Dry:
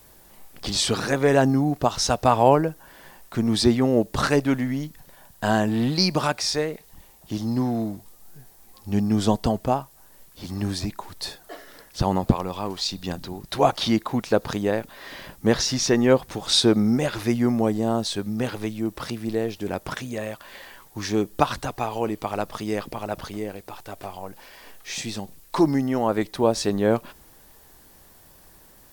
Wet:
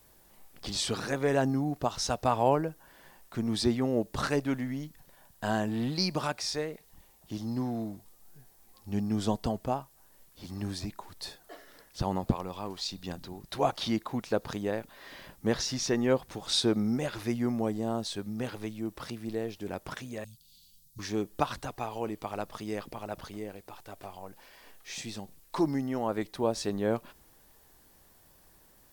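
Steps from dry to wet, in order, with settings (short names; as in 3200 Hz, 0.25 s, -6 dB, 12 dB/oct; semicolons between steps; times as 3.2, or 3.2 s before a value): 20.24–20.99 elliptic band-stop 170–4100 Hz, stop band 40 dB; gain -8.5 dB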